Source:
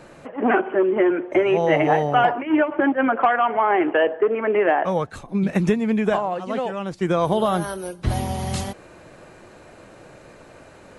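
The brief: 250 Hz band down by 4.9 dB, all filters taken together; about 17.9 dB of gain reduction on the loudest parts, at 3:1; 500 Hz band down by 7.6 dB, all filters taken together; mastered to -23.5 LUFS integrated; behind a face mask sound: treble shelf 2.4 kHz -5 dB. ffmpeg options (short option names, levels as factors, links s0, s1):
-af "equalizer=f=250:t=o:g=-3.5,equalizer=f=500:t=o:g=-9,acompressor=threshold=0.00794:ratio=3,highshelf=f=2400:g=-5,volume=7.94"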